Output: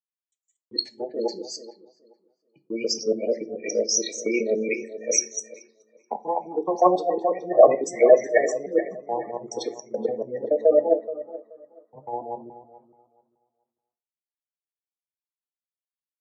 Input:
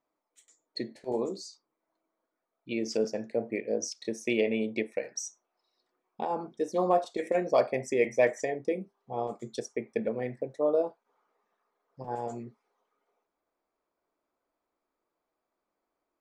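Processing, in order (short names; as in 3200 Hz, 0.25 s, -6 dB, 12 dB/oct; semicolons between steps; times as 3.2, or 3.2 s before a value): local time reversal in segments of 0.142 s; steep low-pass 8500 Hz 96 dB/oct; spectral gate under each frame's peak -15 dB strong; dark delay 0.428 s, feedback 40%, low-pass 2900 Hz, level -10 dB; AGC gain up to 11 dB; gate with hold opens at -46 dBFS; HPF 600 Hz 6 dB/oct; on a send at -9 dB: reverb, pre-delay 6 ms; on the sum: three-band expander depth 70%; gain -1.5 dB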